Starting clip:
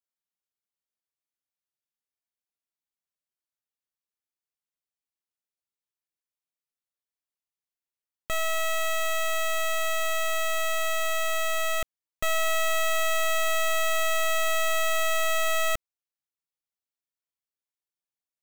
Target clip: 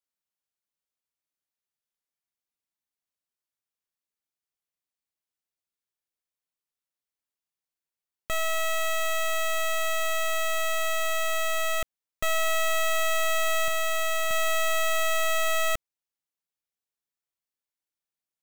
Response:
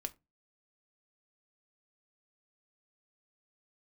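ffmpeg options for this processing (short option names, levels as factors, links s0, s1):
-filter_complex "[0:a]asettb=1/sr,asplit=3[s0][s1][s2];[s0]atrim=end=13.684[s3];[s1]atrim=start=13.68:end=14.31,asetpts=PTS-STARTPTS,afade=t=in:d=0.004:c=qsin,afade=t=out:st=0.626:d=0.004:c=qsin,acrusher=bits=3:mix=0:aa=0.5[s4];[s2]atrim=start=14.306[s5];[s3][s4]acrossfade=d=0.004:c1=hsin:c2=qsin[s6];[s6][s5]acrossfade=d=0.004:c1=qsin:c2=hsin"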